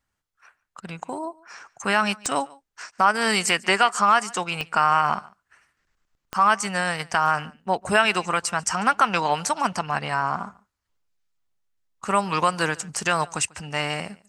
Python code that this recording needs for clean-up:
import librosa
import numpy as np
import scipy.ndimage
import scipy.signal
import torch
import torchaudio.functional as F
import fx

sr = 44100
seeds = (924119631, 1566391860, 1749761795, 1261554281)

y = fx.fix_declick_ar(x, sr, threshold=10.0)
y = fx.fix_echo_inverse(y, sr, delay_ms=144, level_db=-23.5)